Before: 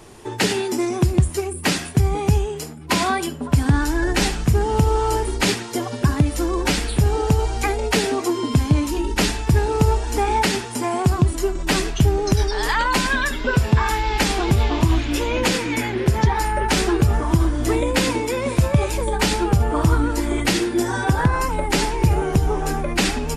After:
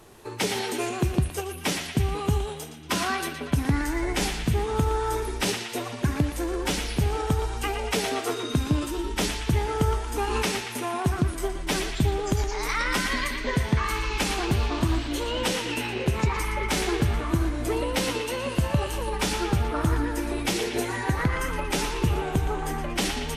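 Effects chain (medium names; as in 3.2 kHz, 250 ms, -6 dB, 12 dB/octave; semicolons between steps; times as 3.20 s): formant shift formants +3 st; band-passed feedback delay 117 ms, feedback 67%, band-pass 2.5 kHz, level -5 dB; trim -7 dB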